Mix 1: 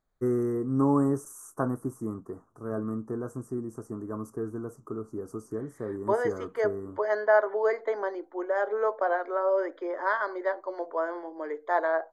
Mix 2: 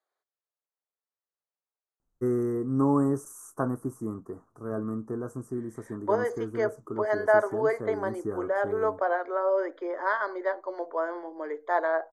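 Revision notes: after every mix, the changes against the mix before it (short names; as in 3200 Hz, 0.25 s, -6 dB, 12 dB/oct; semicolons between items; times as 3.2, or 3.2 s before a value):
first voice: entry +2.00 s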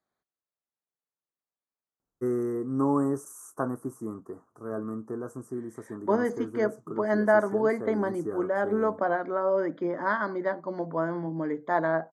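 second voice: remove steep high-pass 390 Hz 36 dB/oct; master: add HPF 190 Hz 6 dB/oct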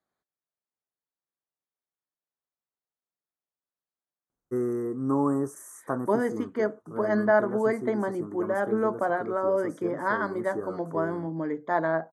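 first voice: entry +2.30 s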